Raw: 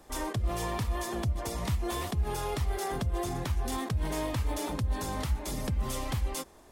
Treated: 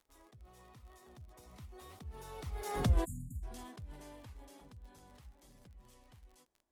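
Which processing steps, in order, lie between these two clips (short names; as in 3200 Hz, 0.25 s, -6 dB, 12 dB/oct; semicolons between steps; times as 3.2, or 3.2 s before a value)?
Doppler pass-by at 2.91, 19 m/s, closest 1.5 m; crackle 32/s -56 dBFS; spectral delete 3.05–3.43, 280–6700 Hz; gain +3 dB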